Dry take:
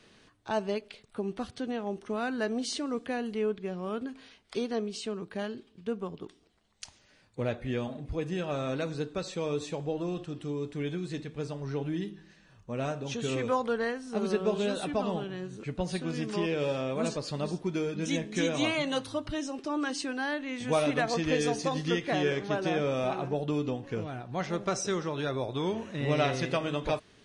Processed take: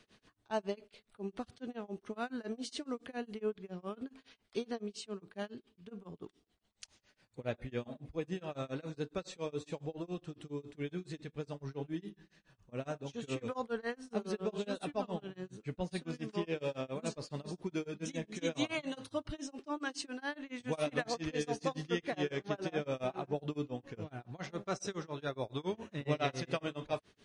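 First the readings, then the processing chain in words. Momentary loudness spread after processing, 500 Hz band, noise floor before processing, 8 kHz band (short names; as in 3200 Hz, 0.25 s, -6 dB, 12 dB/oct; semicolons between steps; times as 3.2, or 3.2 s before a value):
9 LU, -7.5 dB, -62 dBFS, -8.5 dB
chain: tremolo 7.2 Hz, depth 98%; gain -3.5 dB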